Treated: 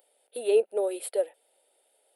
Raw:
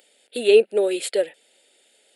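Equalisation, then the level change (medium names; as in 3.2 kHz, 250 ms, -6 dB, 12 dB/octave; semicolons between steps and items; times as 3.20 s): high-pass 650 Hz 12 dB/octave; high-order bell 3.4 kHz -15.5 dB 2.7 oct; band-stop 7 kHz, Q 12; 0.0 dB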